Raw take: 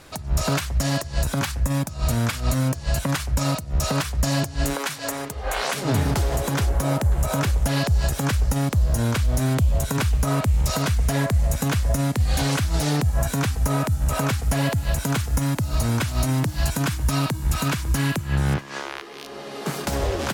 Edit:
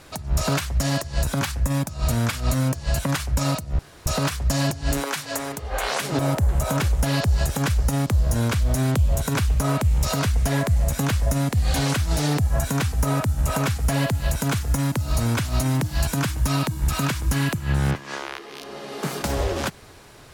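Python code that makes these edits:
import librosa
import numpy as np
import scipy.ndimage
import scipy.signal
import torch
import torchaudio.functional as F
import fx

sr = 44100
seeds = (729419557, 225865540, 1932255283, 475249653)

y = fx.edit(x, sr, fx.insert_room_tone(at_s=3.79, length_s=0.27),
    fx.cut(start_s=5.92, length_s=0.9), tone=tone)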